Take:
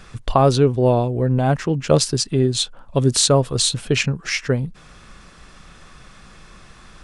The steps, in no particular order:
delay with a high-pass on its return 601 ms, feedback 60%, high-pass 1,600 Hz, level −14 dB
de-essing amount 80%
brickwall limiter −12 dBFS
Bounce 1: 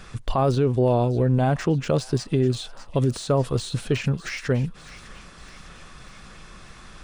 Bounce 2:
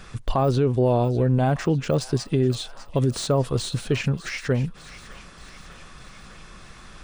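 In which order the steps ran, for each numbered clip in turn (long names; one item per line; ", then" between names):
brickwall limiter, then de-essing, then delay with a high-pass on its return
de-essing, then delay with a high-pass on its return, then brickwall limiter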